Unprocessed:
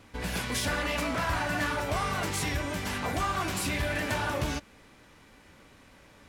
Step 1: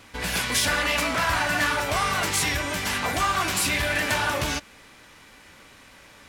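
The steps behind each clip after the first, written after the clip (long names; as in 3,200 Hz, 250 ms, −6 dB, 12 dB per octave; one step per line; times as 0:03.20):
tilt shelving filter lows −4.5 dB, about 800 Hz
level +5 dB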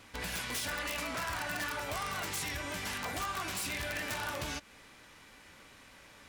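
downward compressor 2.5 to 1, threshold −31 dBFS, peak gain reduction 8 dB
wrap-around overflow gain 22 dB
level −6 dB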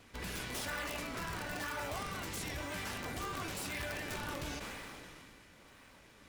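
in parallel at −4 dB: sample-and-hold swept by an LFO 30×, swing 160% 0.99 Hz
on the sum: level that may fall only so fast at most 20 dB per second
level −6 dB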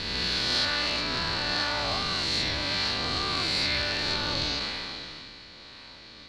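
peak hold with a rise ahead of every peak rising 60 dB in 2.05 s
low-pass with resonance 4,300 Hz, resonance Q 9.5
level +4.5 dB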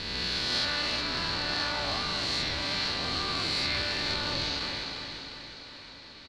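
repeating echo 353 ms, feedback 59%, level −9 dB
level −3 dB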